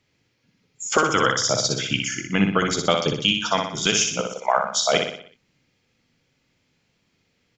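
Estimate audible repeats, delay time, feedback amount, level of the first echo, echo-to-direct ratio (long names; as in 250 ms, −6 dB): 5, 61 ms, 49%, −5.0 dB, −4.0 dB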